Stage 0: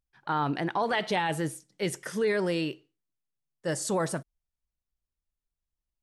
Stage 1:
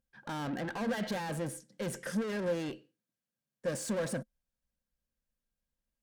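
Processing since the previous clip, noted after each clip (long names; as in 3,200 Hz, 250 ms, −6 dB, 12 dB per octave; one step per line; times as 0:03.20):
tube saturation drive 38 dB, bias 0.25
hollow resonant body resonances 220/520/1,600 Hz, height 13 dB, ringing for 50 ms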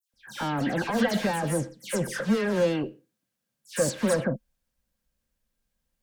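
all-pass dispersion lows, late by 138 ms, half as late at 2,700 Hz
level +9 dB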